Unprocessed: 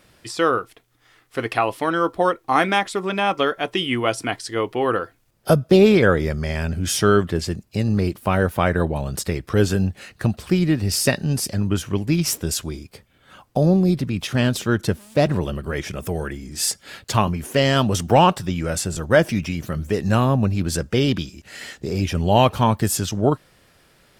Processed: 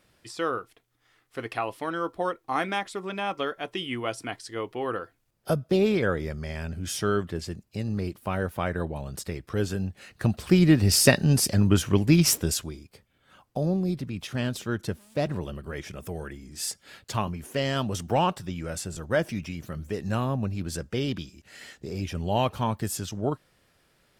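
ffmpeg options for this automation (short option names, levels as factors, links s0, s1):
-af "volume=1.12,afade=t=in:st=9.96:d=0.75:silence=0.298538,afade=t=out:st=12.28:d=0.47:silence=0.298538"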